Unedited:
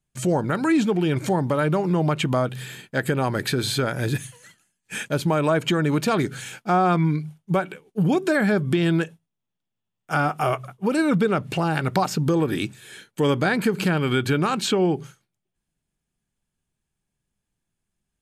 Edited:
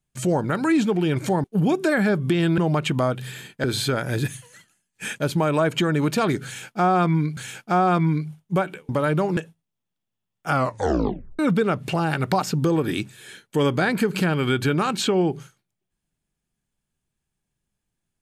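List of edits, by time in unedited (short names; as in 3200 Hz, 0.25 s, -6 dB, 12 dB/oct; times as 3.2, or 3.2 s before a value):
1.44–1.92 swap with 7.87–9.01
2.98–3.54 cut
6.35–7.27 loop, 2 plays
10.16 tape stop 0.87 s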